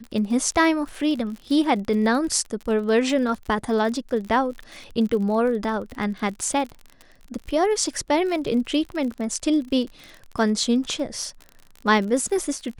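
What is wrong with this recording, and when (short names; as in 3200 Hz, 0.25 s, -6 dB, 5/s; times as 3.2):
crackle 47/s -31 dBFS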